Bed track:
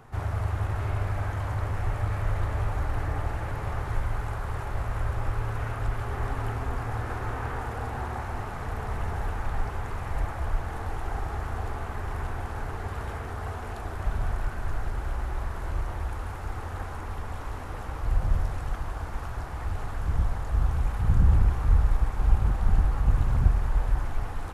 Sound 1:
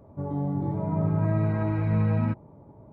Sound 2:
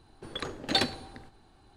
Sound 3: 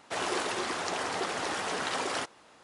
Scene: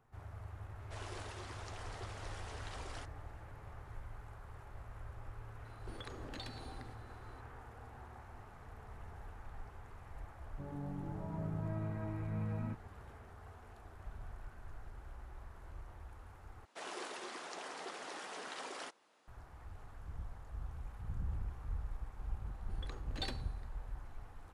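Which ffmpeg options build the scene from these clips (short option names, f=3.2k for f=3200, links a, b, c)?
-filter_complex "[3:a]asplit=2[a][b];[2:a]asplit=2[c][d];[0:a]volume=-20dB[e];[a]aresample=32000,aresample=44100[f];[c]acompressor=threshold=-42dB:ratio=6:attack=3.2:release=140:knee=1:detection=peak[g];[b]highpass=220[h];[e]asplit=2[i][j];[i]atrim=end=16.654[k];[h]atrim=end=2.63,asetpts=PTS-STARTPTS,volume=-13.5dB[l];[j]atrim=start=19.276[m];[f]atrim=end=2.63,asetpts=PTS-STARTPTS,volume=-17.5dB,afade=t=in:d=0.004:c=hsin,afade=t=out:st=2.626:d=0.004:c=hsin,adelay=800[n];[g]atrim=end=1.76,asetpts=PTS-STARTPTS,volume=-3.5dB,afade=t=in:d=0.004:c=hsin,afade=t=out:st=1.756:d=0.004:c=hsin,adelay=249165S[o];[1:a]atrim=end=2.92,asetpts=PTS-STARTPTS,volume=-15dB,afade=t=in:d=0.004:c=hsin,afade=t=out:st=2.916:d=0.004:c=hsin,adelay=10410[p];[d]atrim=end=1.76,asetpts=PTS-STARTPTS,volume=-16dB,afade=t=in:d=0.004:c=hsin,afade=t=out:st=1.756:d=0.004:c=hsin,adelay=22470[q];[k][l]acrossfade=d=0.004:c1=hsin:c2=hsin[r];[r][m]acrossfade=d=0.004:c1=hsin:c2=hsin[s];[s][n][o][p][q]amix=inputs=5:normalize=0"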